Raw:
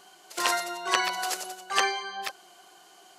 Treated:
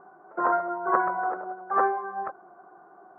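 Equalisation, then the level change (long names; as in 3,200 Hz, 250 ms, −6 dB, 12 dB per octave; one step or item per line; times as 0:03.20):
elliptic low-pass filter 1,400 Hz, stop band 60 dB
high-frequency loss of the air 360 metres
+7.0 dB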